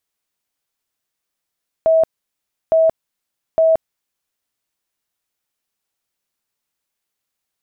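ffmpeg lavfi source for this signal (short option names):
-f lavfi -i "aevalsrc='0.335*sin(2*PI*647*mod(t,0.86))*lt(mod(t,0.86),114/647)':d=2.58:s=44100"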